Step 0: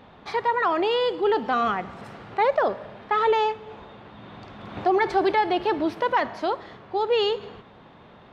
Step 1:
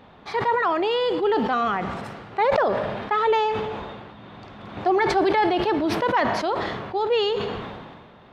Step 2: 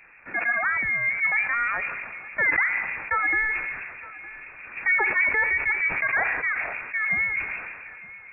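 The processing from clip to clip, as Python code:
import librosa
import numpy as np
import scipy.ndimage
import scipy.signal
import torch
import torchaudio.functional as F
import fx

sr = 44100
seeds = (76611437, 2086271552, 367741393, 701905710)

y1 = fx.sustainer(x, sr, db_per_s=33.0)
y2 = fx.harmonic_tremolo(y1, sr, hz=6.5, depth_pct=50, crossover_hz=840.0)
y2 = fx.freq_invert(y2, sr, carrier_hz=2600)
y2 = y2 + 10.0 ** (-19.0 / 20.0) * np.pad(y2, (int(912 * sr / 1000.0), 0))[:len(y2)]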